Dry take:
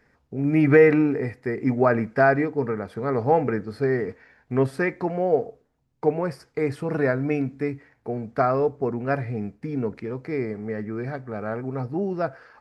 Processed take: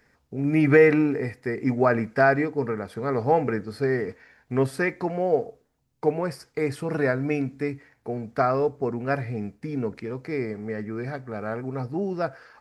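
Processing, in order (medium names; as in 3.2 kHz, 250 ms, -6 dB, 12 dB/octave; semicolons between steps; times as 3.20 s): treble shelf 3.3 kHz +8.5 dB; trim -1.5 dB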